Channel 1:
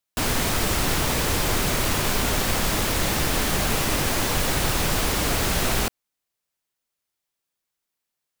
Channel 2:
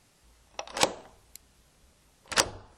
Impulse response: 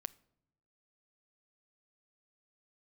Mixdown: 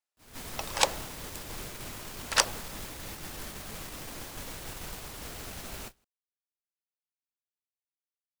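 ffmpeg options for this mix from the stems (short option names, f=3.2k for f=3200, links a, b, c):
-filter_complex "[0:a]highshelf=f=5.4k:g=3,asoftclip=type=tanh:threshold=-20dB,volume=-16dB,asplit=2[a][b];[b]volume=-3dB[c];[1:a]highpass=540,volume=0.5dB[d];[c]aecho=0:1:162:1[e];[a][d][e]amix=inputs=3:normalize=0,agate=range=-29dB:threshold=-39dB:ratio=16:detection=peak"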